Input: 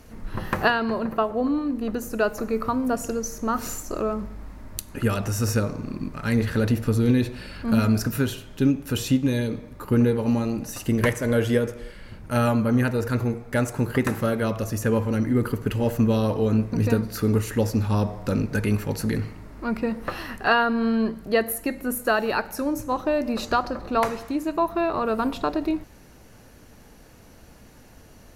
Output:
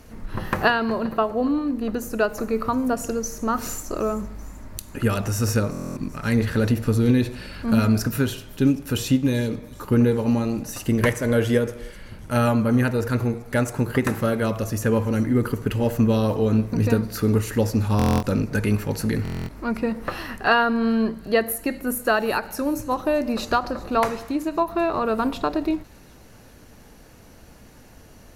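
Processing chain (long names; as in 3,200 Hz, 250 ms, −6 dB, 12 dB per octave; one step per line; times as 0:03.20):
delay with a high-pass on its return 384 ms, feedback 60%, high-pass 4,400 Hz, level −17 dB
buffer that repeats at 0:05.71/0:17.97/0:19.23, samples 1,024, times 10
every ending faded ahead of time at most 310 dB per second
level +1.5 dB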